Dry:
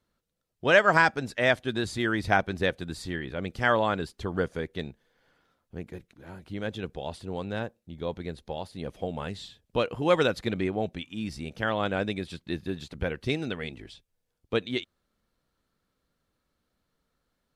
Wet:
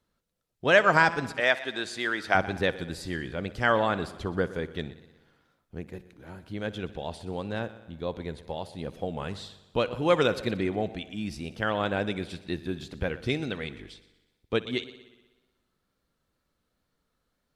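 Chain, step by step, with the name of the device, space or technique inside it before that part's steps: multi-head tape echo (multi-head delay 61 ms, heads first and second, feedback 56%, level -19.5 dB; wow and flutter); 1.40–2.35 s: frequency weighting A

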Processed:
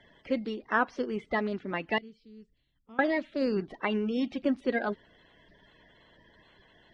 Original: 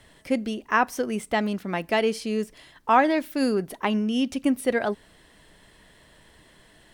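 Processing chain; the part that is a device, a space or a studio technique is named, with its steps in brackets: clip after many re-uploads (low-pass 4.4 kHz 24 dB/octave; coarse spectral quantiser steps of 30 dB); 1.98–2.99 s: amplifier tone stack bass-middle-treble 10-0-1; trim -4.5 dB

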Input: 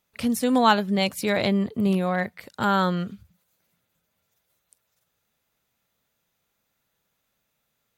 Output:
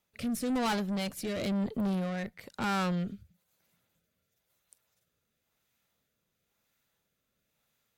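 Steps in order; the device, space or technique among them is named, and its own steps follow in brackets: overdriven rotary cabinet (valve stage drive 27 dB, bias 0.3; rotary cabinet horn 1 Hz)

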